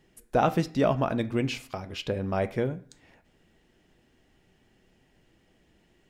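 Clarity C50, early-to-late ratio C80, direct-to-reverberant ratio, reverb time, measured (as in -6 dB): 18.0 dB, 22.0 dB, 11.0 dB, 0.50 s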